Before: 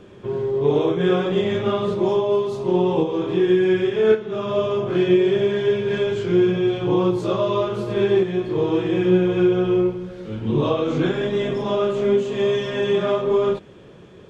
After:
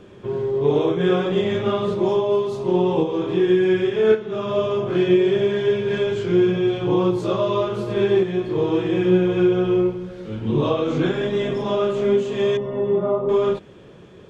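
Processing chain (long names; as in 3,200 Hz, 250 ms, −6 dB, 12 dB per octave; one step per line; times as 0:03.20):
0:12.57–0:13.29: Savitzky-Golay smoothing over 65 samples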